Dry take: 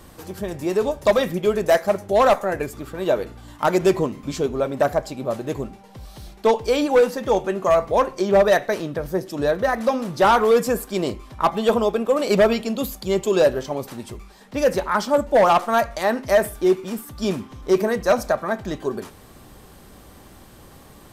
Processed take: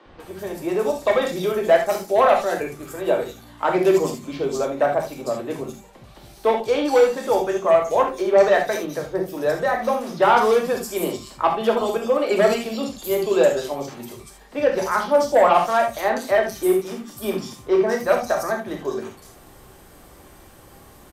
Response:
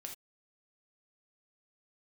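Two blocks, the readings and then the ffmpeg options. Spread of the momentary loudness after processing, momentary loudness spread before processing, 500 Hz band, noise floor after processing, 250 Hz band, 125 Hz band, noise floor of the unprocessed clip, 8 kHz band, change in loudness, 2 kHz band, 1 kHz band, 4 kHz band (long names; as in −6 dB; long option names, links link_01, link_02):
13 LU, 12 LU, 0.0 dB, −47 dBFS, −2.0 dB, −5.0 dB, −47 dBFS, +0.5 dB, 0.0 dB, +0.5 dB, +0.5 dB, −1.5 dB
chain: -filter_complex "[0:a]bandreject=frequency=50:width_type=h:width=6,bandreject=frequency=100:width_type=h:width=6,bandreject=frequency=150:width_type=h:width=6,bandreject=frequency=200:width_type=h:width=6,acrossover=split=150|870[link_01][link_02][link_03];[link_01]acompressor=threshold=-49dB:ratio=5[link_04];[link_04][link_02][link_03]amix=inputs=3:normalize=0,acrossover=split=220|4000[link_05][link_06][link_07];[link_05]adelay=50[link_08];[link_07]adelay=200[link_09];[link_08][link_06][link_09]amix=inputs=3:normalize=0[link_10];[1:a]atrim=start_sample=2205[link_11];[link_10][link_11]afir=irnorm=-1:irlink=0,volume=4.5dB"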